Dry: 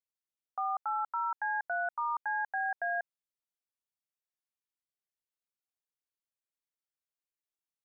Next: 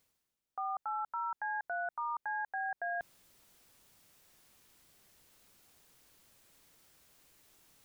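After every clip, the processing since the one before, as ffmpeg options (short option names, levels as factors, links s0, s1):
-af "lowshelf=f=400:g=7.5,alimiter=level_in=3.16:limit=0.0631:level=0:latency=1:release=30,volume=0.316,areverse,acompressor=mode=upward:threshold=0.00355:ratio=2.5,areverse,volume=1.58"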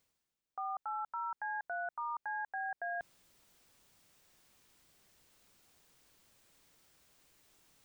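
-af "equalizer=f=12000:w=4.9:g=-15,volume=0.794"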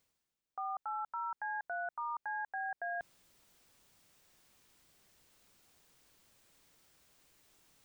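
-af anull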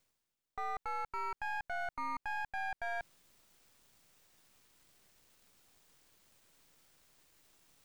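-af "aeval=exprs='if(lt(val(0),0),0.251*val(0),val(0))':c=same,volume=1.5"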